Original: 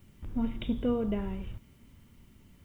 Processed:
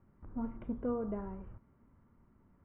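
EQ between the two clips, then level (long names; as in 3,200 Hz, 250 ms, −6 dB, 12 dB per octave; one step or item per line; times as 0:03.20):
transistor ladder low-pass 1,600 Hz, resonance 35%
high-frequency loss of the air 460 metres
low-shelf EQ 240 Hz −7.5 dB
+4.5 dB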